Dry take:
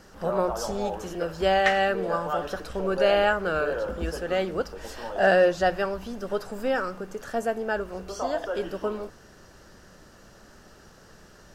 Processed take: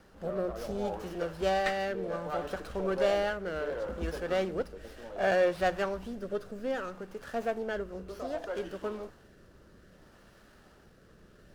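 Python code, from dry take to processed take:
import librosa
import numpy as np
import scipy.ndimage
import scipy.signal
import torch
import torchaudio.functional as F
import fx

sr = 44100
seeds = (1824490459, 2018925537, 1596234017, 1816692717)

y = fx.rotary(x, sr, hz=0.65)
y = fx.running_max(y, sr, window=5)
y = F.gain(torch.from_numpy(y), -3.5).numpy()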